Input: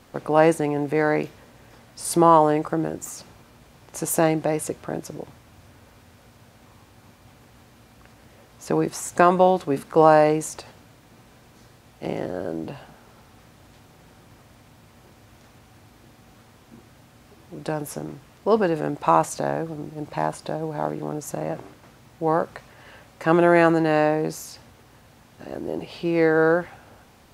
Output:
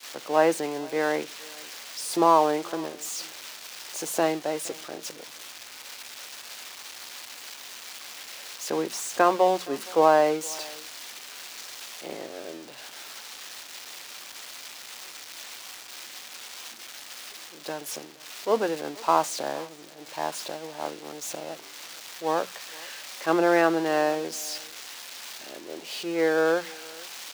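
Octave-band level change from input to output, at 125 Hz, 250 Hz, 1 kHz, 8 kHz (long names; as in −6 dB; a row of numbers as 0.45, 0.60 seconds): −15.5, −6.5, −3.5, +0.5 decibels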